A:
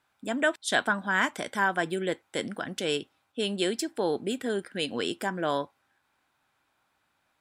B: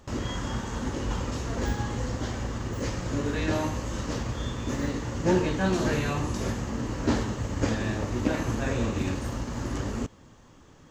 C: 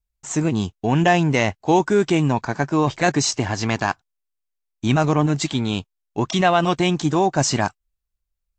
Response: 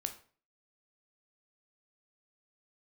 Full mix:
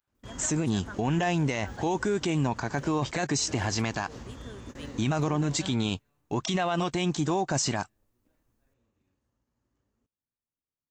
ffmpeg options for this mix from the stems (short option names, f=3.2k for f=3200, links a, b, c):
-filter_complex "[0:a]adynamicequalizer=threshold=0.0126:dfrequency=470:dqfactor=2:tfrequency=470:tqfactor=2:attack=5:release=100:ratio=0.375:range=1.5:mode=cutabove:tftype=bell,volume=-16.5dB,asplit=2[a][b];[1:a]volume=-11.5dB[c];[2:a]highshelf=f=6k:g=6.5,adelay=150,volume=0.5dB[d];[b]apad=whole_len=481036[e];[c][e]sidechaingate=range=-36dB:threshold=-59dB:ratio=16:detection=peak[f];[a][f][d]amix=inputs=3:normalize=0,alimiter=limit=-18.5dB:level=0:latency=1:release=116"